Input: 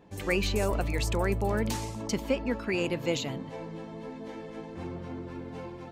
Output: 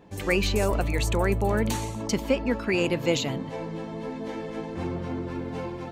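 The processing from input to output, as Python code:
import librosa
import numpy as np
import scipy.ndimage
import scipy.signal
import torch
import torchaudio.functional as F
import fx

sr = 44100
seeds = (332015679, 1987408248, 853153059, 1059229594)

p1 = fx.rider(x, sr, range_db=5, speed_s=2.0)
p2 = x + (p1 * librosa.db_to_amplitude(-3.0))
y = fx.notch(p2, sr, hz=5100.0, q=6.0, at=(0.83, 2.02))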